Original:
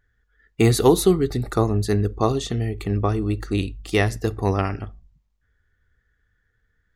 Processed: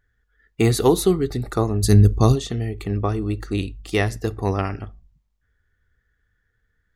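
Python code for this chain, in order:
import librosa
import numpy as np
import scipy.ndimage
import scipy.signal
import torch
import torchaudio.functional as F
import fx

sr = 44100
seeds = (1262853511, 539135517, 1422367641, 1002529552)

y = fx.bass_treble(x, sr, bass_db=12, treble_db=13, at=(1.82, 2.34), fade=0.02)
y = y * 10.0 ** (-1.0 / 20.0)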